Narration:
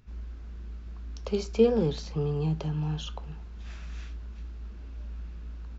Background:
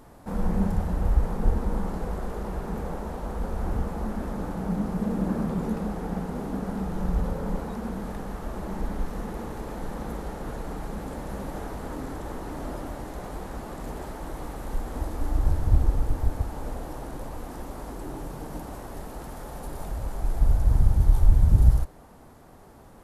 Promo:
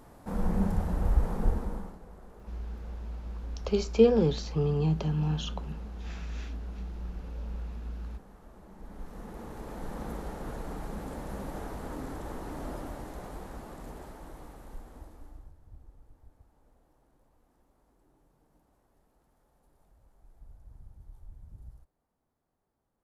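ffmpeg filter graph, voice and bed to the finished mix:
ffmpeg -i stem1.wav -i stem2.wav -filter_complex "[0:a]adelay=2400,volume=1.5dB[link_01];[1:a]volume=11.5dB,afade=type=out:start_time=1.41:duration=0.57:silence=0.16788,afade=type=in:start_time=8.77:duration=1.25:silence=0.188365,afade=type=out:start_time=12.74:duration=2.78:silence=0.0421697[link_02];[link_01][link_02]amix=inputs=2:normalize=0" out.wav

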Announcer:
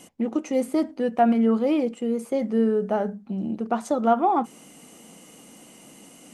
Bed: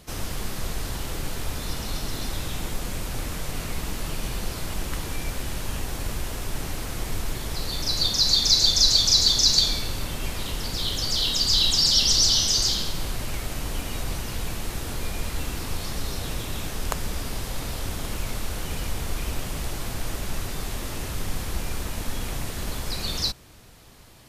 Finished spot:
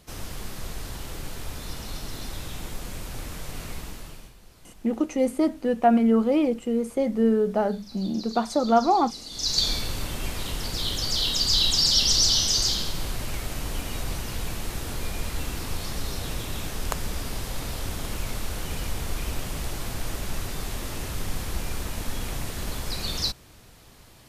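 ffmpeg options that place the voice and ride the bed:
ffmpeg -i stem1.wav -i stem2.wav -filter_complex "[0:a]adelay=4650,volume=0.5dB[link_01];[1:a]volume=16dB,afade=type=out:start_time=3.71:duration=0.63:silence=0.141254,afade=type=in:start_time=9.3:duration=0.41:silence=0.0891251[link_02];[link_01][link_02]amix=inputs=2:normalize=0" out.wav

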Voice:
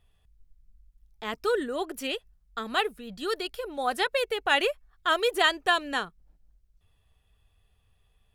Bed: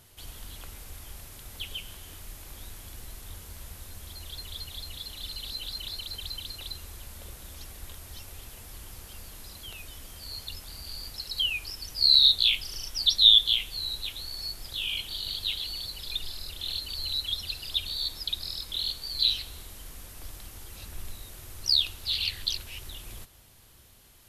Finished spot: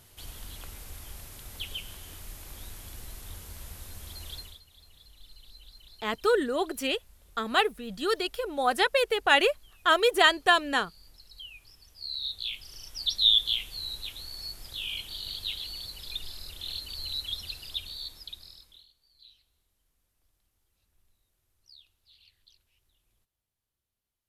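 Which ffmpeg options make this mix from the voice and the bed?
ffmpeg -i stem1.wav -i stem2.wav -filter_complex "[0:a]adelay=4800,volume=2.5dB[link_01];[1:a]volume=14dB,afade=type=out:start_time=4.33:duration=0.27:silence=0.133352,afade=type=in:start_time=12.17:duration=1.31:silence=0.199526,afade=type=out:start_time=17.44:duration=1.43:silence=0.0398107[link_02];[link_01][link_02]amix=inputs=2:normalize=0" out.wav

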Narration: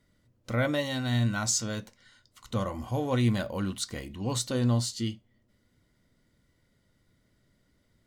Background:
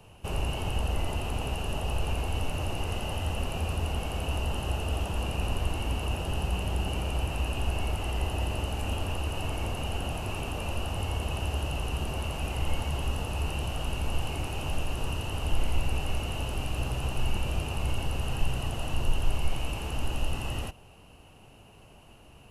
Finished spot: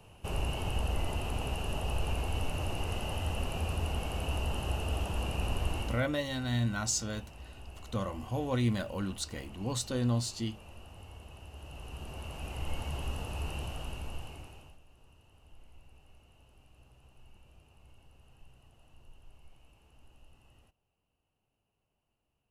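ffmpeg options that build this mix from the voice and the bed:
ffmpeg -i stem1.wav -i stem2.wav -filter_complex "[0:a]adelay=5400,volume=-4dB[link_01];[1:a]volume=9.5dB,afade=type=out:start_time=5.8:duration=0.26:silence=0.16788,afade=type=in:start_time=11.51:duration=1.38:silence=0.237137,afade=type=out:start_time=13.58:duration=1.2:silence=0.0668344[link_02];[link_01][link_02]amix=inputs=2:normalize=0" out.wav

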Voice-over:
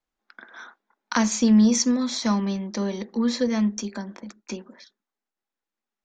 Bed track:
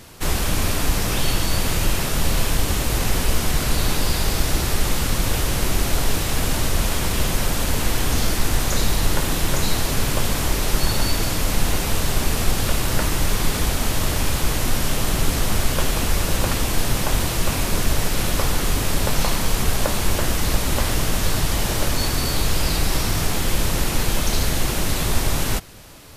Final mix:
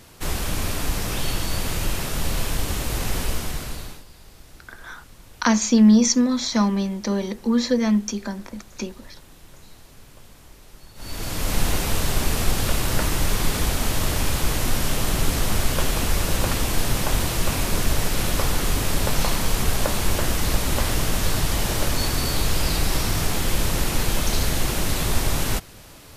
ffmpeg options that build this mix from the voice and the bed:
ffmpeg -i stem1.wav -i stem2.wav -filter_complex "[0:a]adelay=4300,volume=3dB[link_01];[1:a]volume=20.5dB,afade=type=out:start_time=3.22:duration=0.82:silence=0.0794328,afade=type=in:start_time=10.95:duration=0.63:silence=0.0562341[link_02];[link_01][link_02]amix=inputs=2:normalize=0" out.wav

